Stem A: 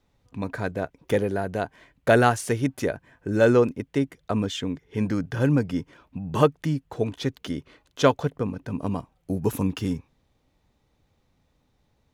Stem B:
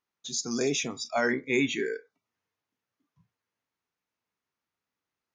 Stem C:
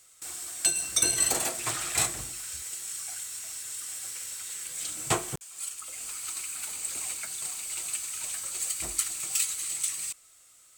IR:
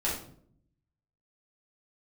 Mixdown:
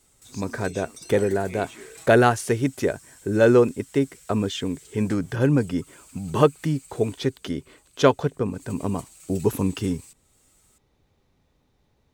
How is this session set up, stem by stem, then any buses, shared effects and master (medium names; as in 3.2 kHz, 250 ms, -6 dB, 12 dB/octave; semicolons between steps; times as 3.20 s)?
+1.0 dB, 0.00 s, no send, peaking EQ 390 Hz +6 dB 0.23 oct
-14.0 dB, 0.00 s, no send, none
7.15 s -8.5 dB -> 7.44 s -20.5 dB -> 8.43 s -20.5 dB -> 8.70 s -7.5 dB, 0.00 s, no send, comb 6.2 ms, depth 92%; compression 2:1, threshold -47 dBFS, peak gain reduction 16.5 dB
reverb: none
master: none